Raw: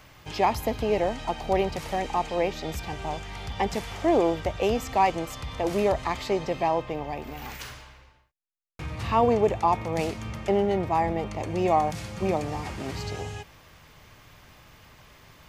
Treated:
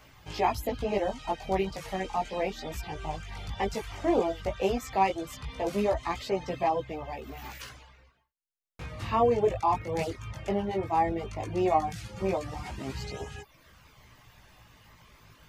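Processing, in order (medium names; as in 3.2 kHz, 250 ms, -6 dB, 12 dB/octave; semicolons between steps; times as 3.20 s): chorus voices 2, 0.15 Hz, delay 18 ms, depth 3.1 ms; reverb removal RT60 0.55 s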